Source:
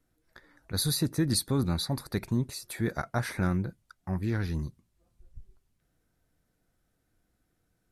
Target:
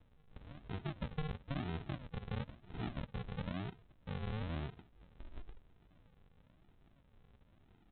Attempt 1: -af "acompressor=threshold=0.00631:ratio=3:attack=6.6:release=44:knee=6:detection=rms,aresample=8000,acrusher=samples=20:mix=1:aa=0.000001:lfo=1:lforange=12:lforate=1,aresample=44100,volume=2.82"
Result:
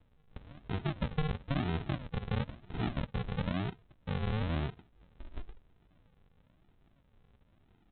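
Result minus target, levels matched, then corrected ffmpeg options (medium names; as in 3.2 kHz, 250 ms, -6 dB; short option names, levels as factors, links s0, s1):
compression: peak gain reduction -7.5 dB
-af "acompressor=threshold=0.00178:ratio=3:attack=6.6:release=44:knee=6:detection=rms,aresample=8000,acrusher=samples=20:mix=1:aa=0.000001:lfo=1:lforange=12:lforate=1,aresample=44100,volume=2.82"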